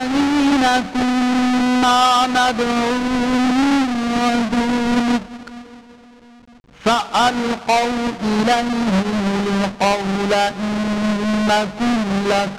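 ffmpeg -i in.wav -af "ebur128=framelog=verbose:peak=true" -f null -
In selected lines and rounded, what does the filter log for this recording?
Integrated loudness:
  I:         -17.3 LUFS
  Threshold: -27.8 LUFS
Loudness range:
  LRA:         4.5 LU
  Threshold: -38.1 LUFS
  LRA low:   -20.5 LUFS
  LRA high:  -16.0 LUFS
True peak:
  Peak:       -6.8 dBFS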